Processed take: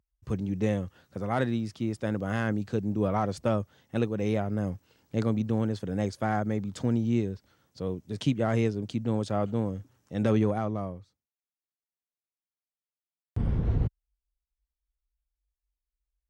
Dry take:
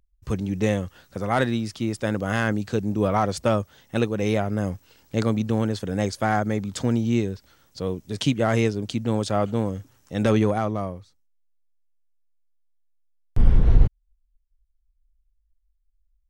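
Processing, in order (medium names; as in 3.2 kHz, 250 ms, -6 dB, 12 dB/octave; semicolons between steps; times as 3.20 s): high-pass 90 Hz; tilt EQ -1.5 dB/octave; trim -7 dB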